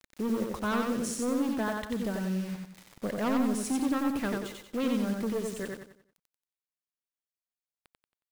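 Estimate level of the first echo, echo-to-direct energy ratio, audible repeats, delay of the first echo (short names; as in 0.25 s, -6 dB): -3.0 dB, -2.5 dB, 4, 91 ms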